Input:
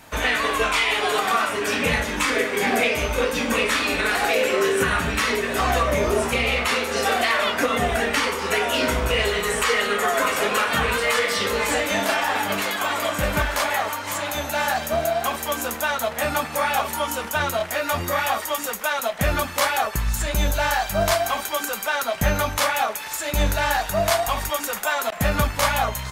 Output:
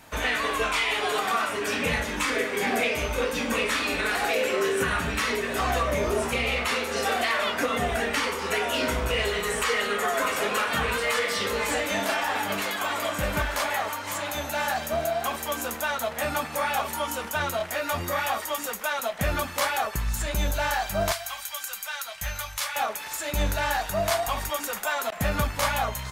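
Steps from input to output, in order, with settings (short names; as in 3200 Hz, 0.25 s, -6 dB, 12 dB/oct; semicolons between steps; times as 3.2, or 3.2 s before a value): 21.12–22.76 passive tone stack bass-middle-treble 10-0-10; in parallel at -10 dB: soft clip -21.5 dBFS, distortion -11 dB; on the sum: gain -6 dB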